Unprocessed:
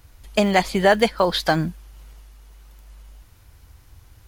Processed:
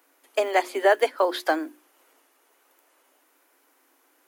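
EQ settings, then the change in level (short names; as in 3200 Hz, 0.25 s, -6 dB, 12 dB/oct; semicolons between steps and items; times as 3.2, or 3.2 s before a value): Chebyshev high-pass 260 Hz, order 10; bell 4400 Hz -8 dB 1.4 oct; notches 60/120/180/240/300/360 Hz; -2.0 dB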